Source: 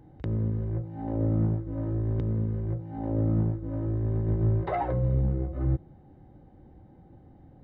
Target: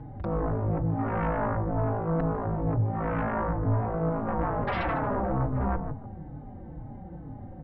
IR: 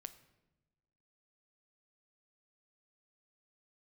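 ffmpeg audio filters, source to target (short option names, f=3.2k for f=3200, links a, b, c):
-filter_complex "[0:a]equalizer=f=75:w=4.2:g=-9.5,aresample=11025,aeval=exprs='0.158*sin(PI/2*6.31*val(0)/0.158)':c=same,aresample=44100,lowpass=1.7k,equalizer=f=370:w=2.1:g=-7,asplit=2[a][b];[b]adelay=150,lowpass=f=1k:p=1,volume=-6.5dB,asplit=2[c][d];[d]adelay=150,lowpass=f=1k:p=1,volume=0.31,asplit=2[e][f];[f]adelay=150,lowpass=f=1k:p=1,volume=0.31,asplit=2[g][h];[h]adelay=150,lowpass=f=1k:p=1,volume=0.31[i];[a][c][e][g][i]amix=inputs=5:normalize=0,asplit=2[j][k];[k]adelay=4.2,afreqshift=-2.2[l];[j][l]amix=inputs=2:normalize=1,volume=-4.5dB"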